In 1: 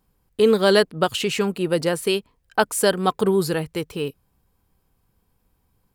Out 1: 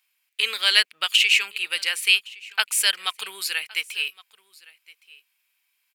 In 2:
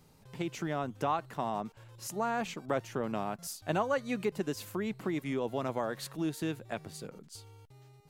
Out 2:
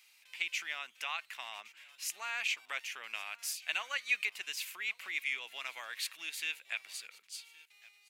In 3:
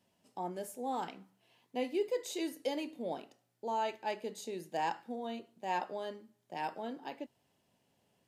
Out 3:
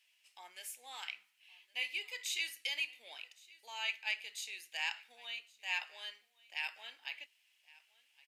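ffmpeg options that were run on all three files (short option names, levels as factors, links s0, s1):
-af "highpass=f=2400:t=q:w=3.5,aecho=1:1:1115:0.0708,volume=1.33"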